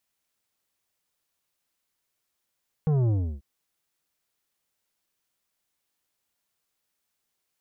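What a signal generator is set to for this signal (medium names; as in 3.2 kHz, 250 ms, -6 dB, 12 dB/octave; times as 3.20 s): sub drop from 160 Hz, over 0.54 s, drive 10 dB, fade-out 0.32 s, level -21 dB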